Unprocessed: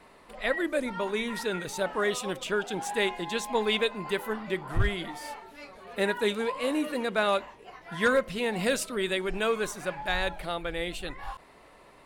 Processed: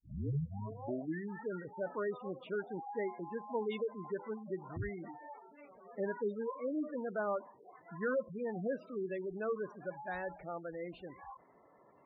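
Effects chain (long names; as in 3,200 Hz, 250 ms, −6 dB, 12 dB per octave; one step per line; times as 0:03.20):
turntable start at the beginning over 1.46 s
parametric band 9,400 Hz −13.5 dB 1.7 octaves
hard clipping −19 dBFS, distortion −21 dB
high-pass filter 100 Hz 12 dB per octave
high-shelf EQ 2,500 Hz −9.5 dB
gate on every frequency bin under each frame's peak −15 dB strong
level −7.5 dB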